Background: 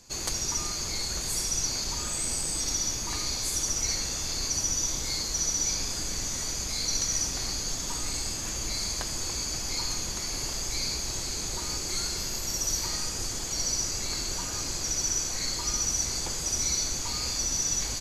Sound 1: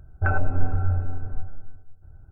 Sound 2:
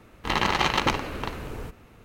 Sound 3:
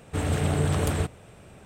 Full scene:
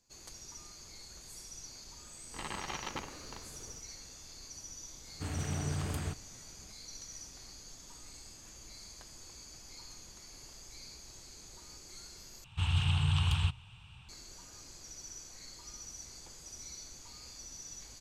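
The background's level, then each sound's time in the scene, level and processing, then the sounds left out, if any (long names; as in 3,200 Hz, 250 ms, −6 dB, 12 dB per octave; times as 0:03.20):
background −19.5 dB
0:02.09: mix in 2 −17.5 dB
0:05.07: mix in 3 −10.5 dB + parametric band 510 Hz −7.5 dB 0.78 octaves
0:12.44: overwrite with 3 −2 dB + drawn EQ curve 120 Hz 0 dB, 300 Hz −24 dB, 600 Hz −29 dB, 900 Hz −2 dB, 2,000 Hz −11 dB, 2,800 Hz +9 dB, 4,700 Hz −2 dB, 14,000 Hz −19 dB
not used: 1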